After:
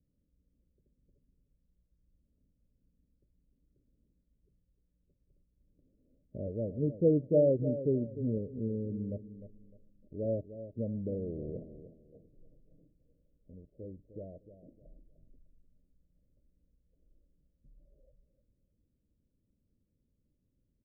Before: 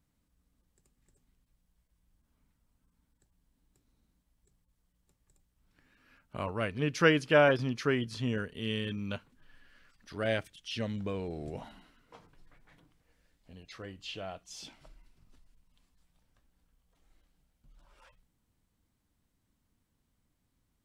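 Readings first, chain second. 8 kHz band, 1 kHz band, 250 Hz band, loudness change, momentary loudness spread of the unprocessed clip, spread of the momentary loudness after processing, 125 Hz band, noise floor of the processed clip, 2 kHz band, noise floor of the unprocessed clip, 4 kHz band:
under -25 dB, under -20 dB, +0.5 dB, -1.5 dB, 22 LU, 23 LU, +0.5 dB, -78 dBFS, under -40 dB, -78 dBFS, under -40 dB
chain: steep low-pass 610 Hz 96 dB/oct; feedback echo 0.303 s, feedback 27%, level -12 dB

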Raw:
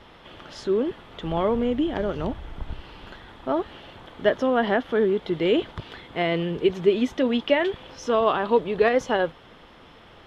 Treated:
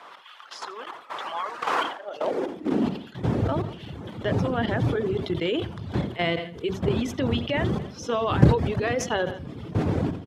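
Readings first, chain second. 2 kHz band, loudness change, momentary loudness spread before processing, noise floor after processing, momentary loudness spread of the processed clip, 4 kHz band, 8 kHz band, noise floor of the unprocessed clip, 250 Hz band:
-1.5 dB, -2.5 dB, 17 LU, -46 dBFS, 12 LU, -0.5 dB, n/a, -50 dBFS, -0.5 dB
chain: wind noise 330 Hz -21 dBFS; level quantiser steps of 12 dB; high shelf 3000 Hz +8 dB; de-hum 49 Hz, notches 16; high-pass sweep 1100 Hz -> 96 Hz, 1.85–3.31; reverb removal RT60 0.88 s; feedback echo 85 ms, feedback 51%, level -19 dB; sustainer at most 97 dB/s

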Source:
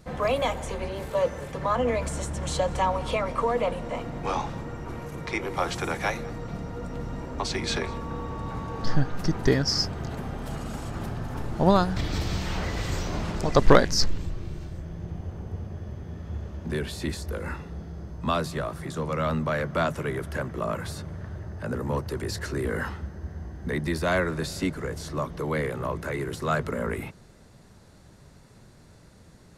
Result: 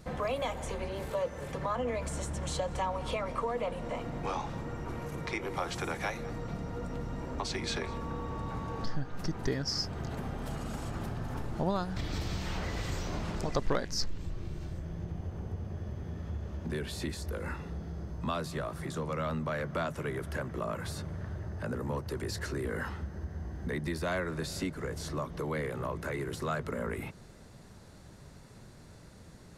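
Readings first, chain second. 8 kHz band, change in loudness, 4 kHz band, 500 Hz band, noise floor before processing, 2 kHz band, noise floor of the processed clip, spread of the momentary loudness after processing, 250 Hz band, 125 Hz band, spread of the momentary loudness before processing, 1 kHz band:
-6.5 dB, -7.5 dB, -7.5 dB, -8.0 dB, -52 dBFS, -7.0 dB, -52 dBFS, 8 LU, -7.0 dB, -6.0 dB, 12 LU, -8.0 dB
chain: compressor 2:1, threshold -36 dBFS, peak gain reduction 15 dB

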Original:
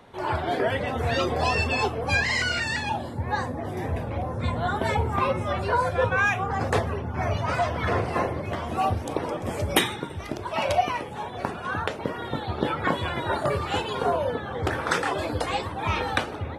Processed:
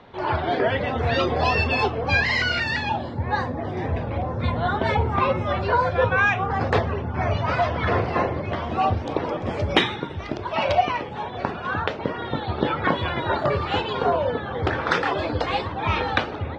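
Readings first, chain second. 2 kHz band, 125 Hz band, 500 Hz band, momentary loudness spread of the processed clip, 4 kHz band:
+3.0 dB, +3.0 dB, +3.0 dB, 7 LU, +2.5 dB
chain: LPF 4900 Hz 24 dB/oct; gain +3 dB

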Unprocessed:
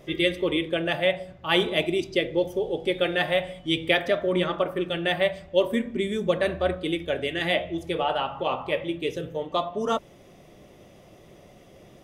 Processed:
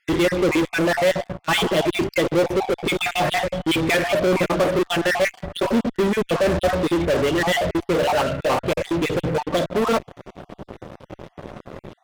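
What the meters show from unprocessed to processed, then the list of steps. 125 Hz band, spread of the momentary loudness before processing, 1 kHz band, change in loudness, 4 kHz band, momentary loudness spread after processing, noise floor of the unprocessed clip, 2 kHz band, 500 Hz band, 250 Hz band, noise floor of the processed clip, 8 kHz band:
+8.0 dB, 6 LU, +6.5 dB, +5.0 dB, +2.0 dB, 20 LU, -52 dBFS, +4.5 dB, +4.5 dB, +6.5 dB, -61 dBFS, n/a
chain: random spectral dropouts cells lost 43%; LPF 1400 Hz 6 dB/oct; in parallel at -7.5 dB: fuzz box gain 42 dB, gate -51 dBFS

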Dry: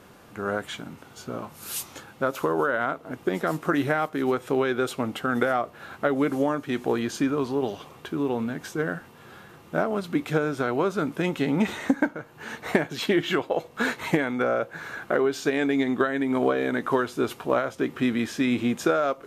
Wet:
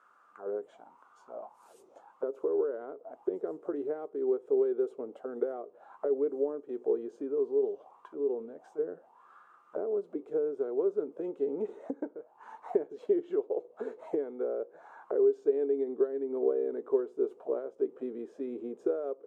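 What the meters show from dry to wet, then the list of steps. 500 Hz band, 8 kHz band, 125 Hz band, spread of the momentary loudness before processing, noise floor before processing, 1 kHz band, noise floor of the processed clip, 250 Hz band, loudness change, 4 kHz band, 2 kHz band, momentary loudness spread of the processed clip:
-3.0 dB, under -30 dB, under -25 dB, 10 LU, -50 dBFS, -18.5 dB, -62 dBFS, -12.5 dB, -6.5 dB, under -30 dB, under -25 dB, 13 LU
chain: graphic EQ 125/2000/4000/8000 Hz -11/-6/-4/+9 dB; auto-wah 420–1400 Hz, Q 6.7, down, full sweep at -26.5 dBFS; gain +2 dB

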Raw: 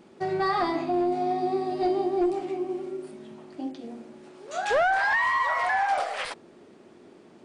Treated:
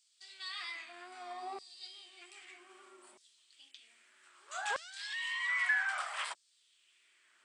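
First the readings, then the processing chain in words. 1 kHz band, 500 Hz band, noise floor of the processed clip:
-18.5 dB, -26.5 dB, -72 dBFS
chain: wow and flutter 46 cents; thirty-one-band EQ 125 Hz +11 dB, 500 Hz -7 dB, 800 Hz -8 dB, 3150 Hz +4 dB, 8000 Hz +12 dB; LFO high-pass saw down 0.63 Hz 820–5200 Hz; gain -8.5 dB

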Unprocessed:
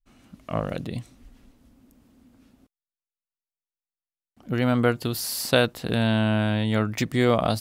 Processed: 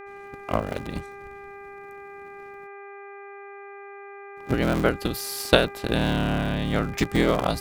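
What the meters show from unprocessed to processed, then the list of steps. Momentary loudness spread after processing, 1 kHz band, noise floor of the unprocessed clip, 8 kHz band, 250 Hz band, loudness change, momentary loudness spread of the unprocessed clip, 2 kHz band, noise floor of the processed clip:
20 LU, +1.5 dB, under -85 dBFS, -2.0 dB, -1.5 dB, -0.5 dB, 10 LU, +1.0 dB, -42 dBFS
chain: cycle switcher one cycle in 3, inverted; buzz 400 Hz, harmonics 6, -39 dBFS -4 dB/oct; transient shaper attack +8 dB, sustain +2 dB; gain -3 dB

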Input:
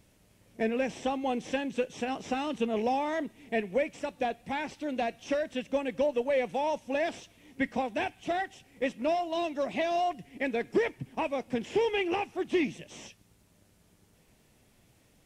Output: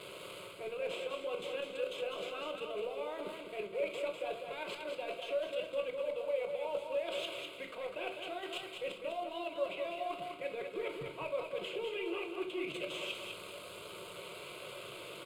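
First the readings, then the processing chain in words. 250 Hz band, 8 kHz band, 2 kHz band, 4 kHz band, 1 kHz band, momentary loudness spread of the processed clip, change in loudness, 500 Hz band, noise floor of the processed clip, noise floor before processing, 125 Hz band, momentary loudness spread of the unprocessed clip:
-14.5 dB, -5.5 dB, -7.5 dB, -1.0 dB, -11.0 dB, 9 LU, -8.0 dB, -6.0 dB, -49 dBFS, -65 dBFS, -10.5 dB, 6 LU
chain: zero-crossing step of -41 dBFS; HPF 320 Hz 12 dB/oct; level quantiser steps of 11 dB; limiter -30 dBFS, peak gain reduction 7 dB; reverse; compressor 8:1, threshold -46 dBFS, peak gain reduction 13 dB; reverse; short-mantissa float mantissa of 2-bit; air absorption 62 m; fixed phaser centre 1200 Hz, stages 8; on a send: feedback echo 0.201 s, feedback 29%, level -5.5 dB; on the sum: shoebox room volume 320 m³, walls furnished, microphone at 1 m; gain +11 dB

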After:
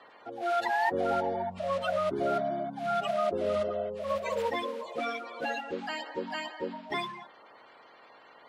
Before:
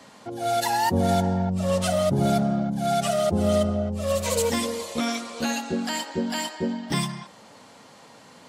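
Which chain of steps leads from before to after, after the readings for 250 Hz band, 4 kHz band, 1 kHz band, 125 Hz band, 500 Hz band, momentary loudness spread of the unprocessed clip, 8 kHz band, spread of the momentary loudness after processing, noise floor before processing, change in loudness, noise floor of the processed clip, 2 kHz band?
-14.5 dB, -10.0 dB, -4.0 dB, -20.0 dB, -5.0 dB, 6 LU, under -20 dB, 8 LU, -50 dBFS, -7.0 dB, -56 dBFS, -2.0 dB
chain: bin magnitudes rounded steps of 30 dB; three-band isolator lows -19 dB, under 330 Hz, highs -22 dB, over 3500 Hz; gain -3 dB

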